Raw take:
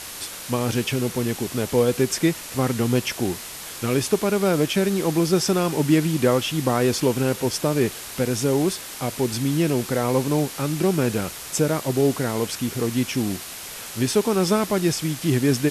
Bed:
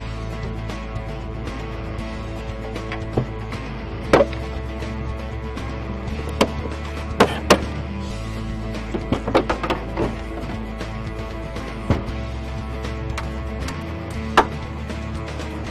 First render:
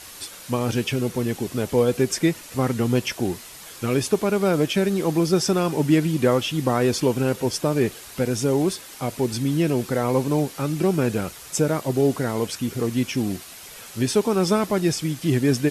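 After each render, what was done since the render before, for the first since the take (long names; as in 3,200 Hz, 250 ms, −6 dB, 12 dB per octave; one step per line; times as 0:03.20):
broadband denoise 7 dB, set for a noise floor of −36 dBFS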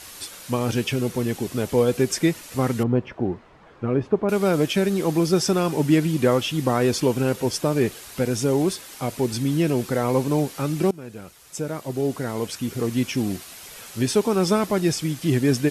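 0:02.83–0:04.29: low-pass filter 1,200 Hz
0:10.91–0:12.97: fade in, from −20 dB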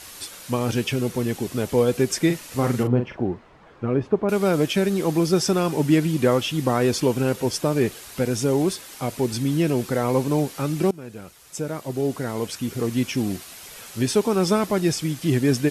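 0:02.26–0:03.23: double-tracking delay 41 ms −7 dB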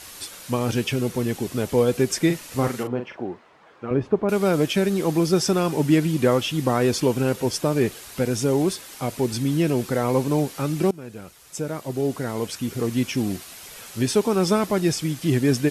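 0:02.68–0:03.91: high-pass filter 490 Hz 6 dB per octave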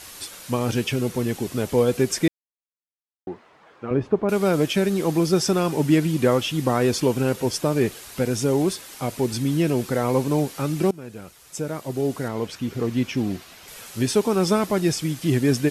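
0:02.28–0:03.27: silence
0:12.28–0:13.68: parametric band 10,000 Hz −10.5 dB 1.4 octaves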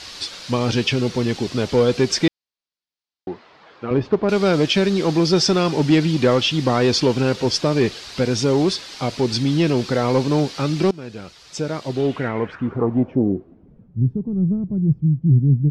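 in parallel at −5.5 dB: hard clipping −18 dBFS, distortion −11 dB
on the sum: low-pass filter sweep 4,600 Hz → 150 Hz, 0:11.88–0:13.96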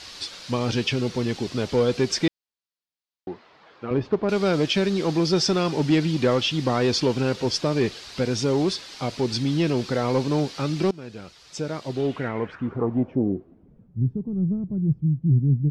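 level −4.5 dB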